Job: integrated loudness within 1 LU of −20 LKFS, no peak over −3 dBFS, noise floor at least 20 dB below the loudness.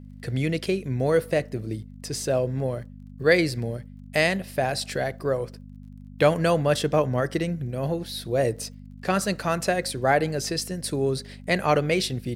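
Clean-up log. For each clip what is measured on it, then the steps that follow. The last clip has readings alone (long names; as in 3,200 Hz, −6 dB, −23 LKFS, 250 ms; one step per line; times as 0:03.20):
crackle rate 29 per second; mains hum 50 Hz; hum harmonics up to 250 Hz; level of the hum −41 dBFS; integrated loudness −25.5 LKFS; sample peak −5.0 dBFS; target loudness −20.0 LKFS
→ click removal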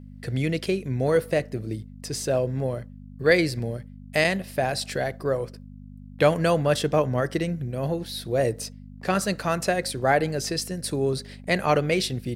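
crackle rate 0.16 per second; mains hum 50 Hz; hum harmonics up to 250 Hz; level of the hum −41 dBFS
→ hum removal 50 Hz, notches 5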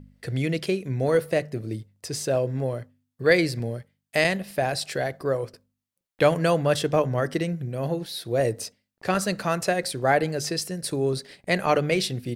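mains hum none found; integrated loudness −25.5 LKFS; sample peak −5.0 dBFS; target loudness −20.0 LKFS
→ level +5.5 dB
brickwall limiter −3 dBFS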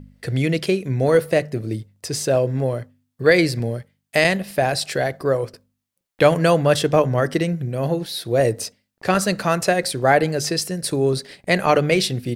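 integrated loudness −20.0 LKFS; sample peak −3.0 dBFS; background noise floor −77 dBFS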